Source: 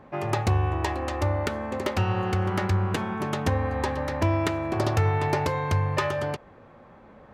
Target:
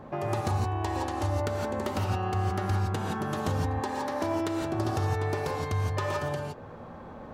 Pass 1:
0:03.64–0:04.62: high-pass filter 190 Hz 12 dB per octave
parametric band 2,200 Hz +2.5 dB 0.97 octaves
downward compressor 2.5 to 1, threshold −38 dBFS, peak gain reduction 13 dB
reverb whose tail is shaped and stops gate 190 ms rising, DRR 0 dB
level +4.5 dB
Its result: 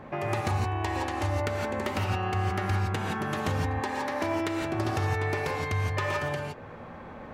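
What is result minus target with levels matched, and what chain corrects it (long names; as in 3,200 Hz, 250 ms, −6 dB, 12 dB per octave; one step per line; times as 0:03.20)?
2,000 Hz band +5.0 dB
0:03.64–0:04.62: high-pass filter 190 Hz 12 dB per octave
parametric band 2,200 Hz −6.5 dB 0.97 octaves
downward compressor 2.5 to 1, threshold −38 dBFS, peak gain reduction 13 dB
reverb whose tail is shaped and stops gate 190 ms rising, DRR 0 dB
level +4.5 dB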